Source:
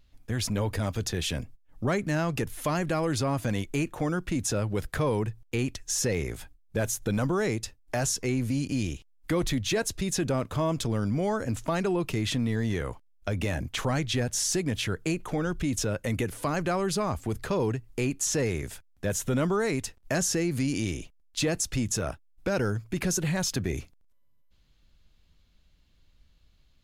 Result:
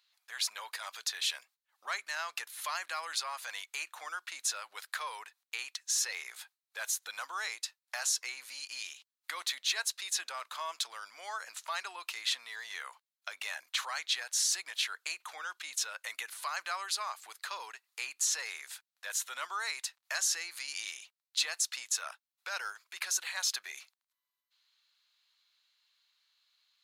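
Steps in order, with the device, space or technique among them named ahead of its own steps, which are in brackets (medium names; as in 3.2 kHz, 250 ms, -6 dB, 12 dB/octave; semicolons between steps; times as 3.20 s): headphones lying on a table (high-pass 1 kHz 24 dB/octave; peaking EQ 4.1 kHz +7.5 dB 0.33 oct); trim -2 dB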